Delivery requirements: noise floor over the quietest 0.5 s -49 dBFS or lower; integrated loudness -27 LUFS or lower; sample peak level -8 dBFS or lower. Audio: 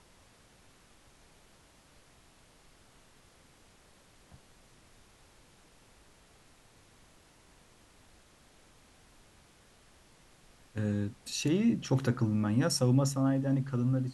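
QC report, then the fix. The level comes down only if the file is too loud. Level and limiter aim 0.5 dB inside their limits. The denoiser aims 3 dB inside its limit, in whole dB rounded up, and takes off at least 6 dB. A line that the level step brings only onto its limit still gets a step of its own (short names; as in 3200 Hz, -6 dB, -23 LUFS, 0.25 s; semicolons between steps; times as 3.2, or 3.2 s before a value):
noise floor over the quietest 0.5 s -61 dBFS: OK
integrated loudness -30.0 LUFS: OK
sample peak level -15.5 dBFS: OK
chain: none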